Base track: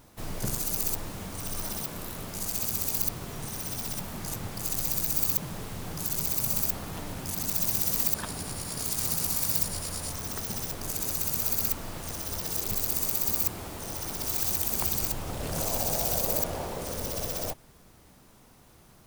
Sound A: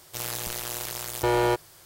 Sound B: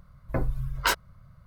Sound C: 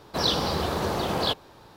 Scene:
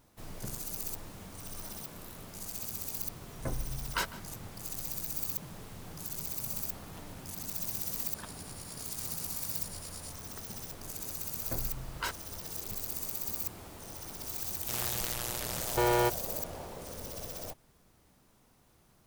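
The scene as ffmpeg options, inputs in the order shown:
ffmpeg -i bed.wav -i cue0.wav -i cue1.wav -filter_complex "[2:a]asplit=2[link_01][link_02];[0:a]volume=-9dB[link_03];[link_01]asplit=2[link_04][link_05];[link_05]adelay=151.6,volume=-17dB,highshelf=frequency=4000:gain=-3.41[link_06];[link_04][link_06]amix=inputs=2:normalize=0[link_07];[1:a]equalizer=frequency=300:width=4.8:gain=-7.5[link_08];[link_07]atrim=end=1.46,asetpts=PTS-STARTPTS,volume=-8.5dB,afade=type=in:duration=0.004:curve=hsin,afade=type=out:start_time=1.456:duration=0.004:curve=hsin,adelay=3110[link_09];[link_02]atrim=end=1.46,asetpts=PTS-STARTPTS,volume=-11.5dB,afade=type=in:duration=0.004:curve=hsin,afade=type=out:start_time=1.456:duration=0.004:curve=hsin,adelay=11170[link_10];[link_08]atrim=end=1.85,asetpts=PTS-STARTPTS,volume=-3.5dB,afade=type=in:duration=0.004:curve=hsin,afade=type=out:start_time=1.846:duration=0.004:curve=hsin,adelay=14540[link_11];[link_03][link_09][link_10][link_11]amix=inputs=4:normalize=0" out.wav

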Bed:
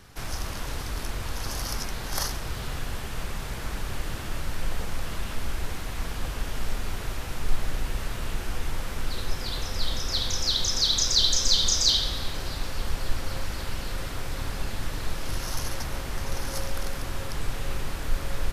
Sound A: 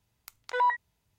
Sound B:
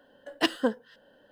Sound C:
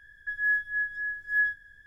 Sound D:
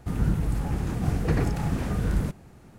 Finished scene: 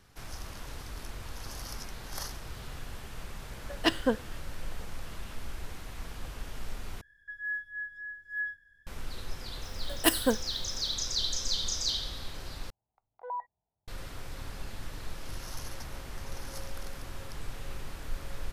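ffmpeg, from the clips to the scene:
ffmpeg -i bed.wav -i cue0.wav -i cue1.wav -i cue2.wav -filter_complex "[2:a]asplit=2[link_01][link_02];[0:a]volume=-9.5dB[link_03];[link_02]aexciter=amount=10.7:drive=6.5:freq=8100[link_04];[1:a]lowpass=frequency=760:width_type=q:width=4.5[link_05];[link_03]asplit=3[link_06][link_07][link_08];[link_06]atrim=end=7.014[link_09];[3:a]atrim=end=1.86,asetpts=PTS-STARTPTS,volume=-9dB[link_10];[link_07]atrim=start=8.866:end=12.704[link_11];[link_05]atrim=end=1.18,asetpts=PTS-STARTPTS,volume=-14.5dB[link_12];[link_08]atrim=start=13.876[link_13];[link_01]atrim=end=1.31,asetpts=PTS-STARTPTS,volume=-1dB,afade=type=in:duration=0.004:curve=hsin,afade=type=out:start_time=1.306:duration=0.004:curve=hsin,adelay=3430[link_14];[link_04]atrim=end=1.31,asetpts=PTS-STARTPTS,volume=-0.5dB,afade=type=in:duration=0.004:curve=hsin,afade=type=out:start_time=1.306:duration=0.004:curve=hsin,adelay=9630[link_15];[link_09][link_10]acrossfade=duration=0.004:curve1=hsin:curve2=hsin[link_16];[link_16][link_11]acrossfade=duration=0.004:curve1=hsin:curve2=hsin[link_17];[link_17][link_12]acrossfade=duration=0.004:curve1=hsin:curve2=hsin[link_18];[link_18][link_13]acrossfade=duration=0.004:curve1=hsin:curve2=hsin[link_19];[link_19][link_14][link_15]amix=inputs=3:normalize=0" out.wav

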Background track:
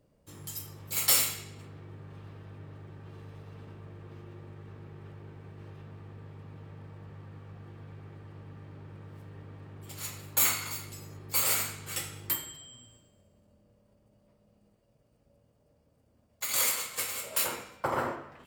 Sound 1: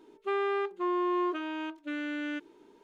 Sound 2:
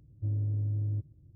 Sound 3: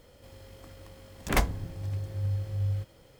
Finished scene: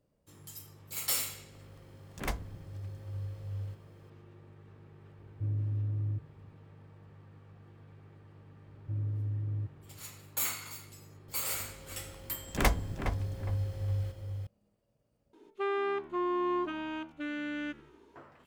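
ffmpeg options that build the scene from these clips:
ffmpeg -i bed.wav -i cue0.wav -i cue1.wav -i cue2.wav -filter_complex "[3:a]asplit=2[link_01][link_02];[2:a]asplit=2[link_03][link_04];[0:a]volume=-7.5dB[link_05];[link_02]asplit=2[link_06][link_07];[link_07]adelay=413,lowpass=frequency=1800:poles=1,volume=-7dB,asplit=2[link_08][link_09];[link_09]adelay=413,lowpass=frequency=1800:poles=1,volume=0.32,asplit=2[link_10][link_11];[link_11]adelay=413,lowpass=frequency=1800:poles=1,volume=0.32,asplit=2[link_12][link_13];[link_13]adelay=413,lowpass=frequency=1800:poles=1,volume=0.32[link_14];[link_06][link_08][link_10][link_12][link_14]amix=inputs=5:normalize=0[link_15];[1:a]asplit=6[link_16][link_17][link_18][link_19][link_20][link_21];[link_17]adelay=87,afreqshift=-74,volume=-22dB[link_22];[link_18]adelay=174,afreqshift=-148,volume=-26dB[link_23];[link_19]adelay=261,afreqshift=-222,volume=-30dB[link_24];[link_20]adelay=348,afreqshift=-296,volume=-34dB[link_25];[link_21]adelay=435,afreqshift=-370,volume=-38.1dB[link_26];[link_16][link_22][link_23][link_24][link_25][link_26]amix=inputs=6:normalize=0[link_27];[link_05]asplit=2[link_28][link_29];[link_28]atrim=end=15.334[link_30];[link_27]atrim=end=2.83,asetpts=PTS-STARTPTS,volume=-2dB[link_31];[link_29]atrim=start=18.156[link_32];[link_01]atrim=end=3.19,asetpts=PTS-STARTPTS,volume=-10dB,afade=type=in:duration=0.004:curve=hsin,afade=type=out:start_time=3.186:duration=0.004:curve=hsin,adelay=910[link_33];[link_03]atrim=end=1.35,asetpts=PTS-STARTPTS,volume=-2dB,afade=type=in:duration=0.004:curve=hsin,afade=type=out:start_time=1.346:duration=0.004:curve=hsin,adelay=5180[link_34];[link_04]atrim=end=1.35,asetpts=PTS-STARTPTS,volume=-3.5dB,afade=type=in:duration=0.004:curve=hsin,afade=type=out:start_time=1.346:duration=0.004:curve=hsin,adelay=381906S[link_35];[link_15]atrim=end=3.19,asetpts=PTS-STARTPTS,volume=-1.5dB,afade=type=in:duration=0.004:curve=hsin,afade=type=out:start_time=3.186:duration=0.004:curve=hsin,adelay=11280[link_36];[link_30][link_31]acrossfade=duration=0.004:curve1=hsin:curve2=hsin[link_37];[link_37][link_32]acrossfade=duration=0.004:curve1=hsin:curve2=hsin[link_38];[link_38][link_33][link_34][link_35][link_36]amix=inputs=5:normalize=0" out.wav

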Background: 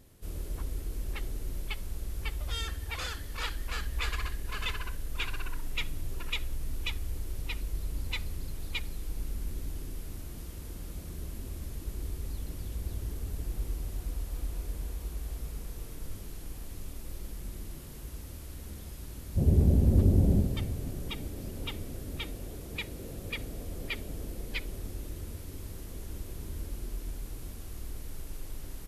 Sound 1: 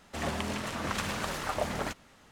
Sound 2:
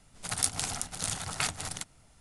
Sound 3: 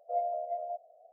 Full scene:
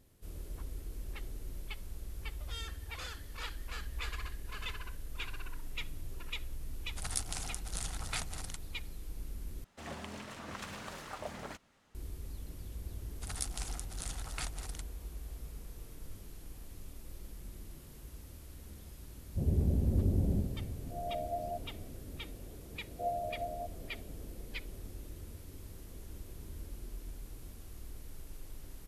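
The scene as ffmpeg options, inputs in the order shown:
ffmpeg -i bed.wav -i cue0.wav -i cue1.wav -i cue2.wav -filter_complex "[2:a]asplit=2[link_01][link_02];[3:a]asplit=2[link_03][link_04];[0:a]volume=-7dB[link_05];[link_03]dynaudnorm=framelen=170:gausssize=3:maxgain=15dB[link_06];[link_05]asplit=2[link_07][link_08];[link_07]atrim=end=9.644[link_09];[1:a]atrim=end=2.31,asetpts=PTS-STARTPTS,volume=-11dB[link_10];[link_08]atrim=start=11.946[link_11];[link_01]atrim=end=2.2,asetpts=PTS-STARTPTS,volume=-8dB,afade=type=in:duration=0.004:curve=hsin,afade=type=out:start_time=2.196:duration=0.004:curve=hsin,adelay=6730[link_12];[link_02]atrim=end=2.2,asetpts=PTS-STARTPTS,volume=-10.5dB,afade=type=in:duration=0.004:curve=hsin,afade=type=out:start_time=2.196:duration=0.004:curve=hsin,adelay=12980[link_13];[link_06]atrim=end=1.12,asetpts=PTS-STARTPTS,volume=-17dB,afade=type=in:duration=0.004:curve=hsin,afade=type=out:start_time=1.116:duration=0.004:curve=hsin,adelay=20810[link_14];[link_04]atrim=end=1.12,asetpts=PTS-STARTPTS,volume=-4dB,afade=type=in:duration=0.004:curve=hsin,afade=type=out:start_time=1.116:duration=0.004:curve=hsin,adelay=22900[link_15];[link_09][link_10]acrossfade=duration=0.004:curve1=hsin:curve2=hsin[link_16];[link_16][link_11]acrossfade=duration=0.004:curve1=hsin:curve2=hsin[link_17];[link_17][link_12][link_13][link_14][link_15]amix=inputs=5:normalize=0" out.wav

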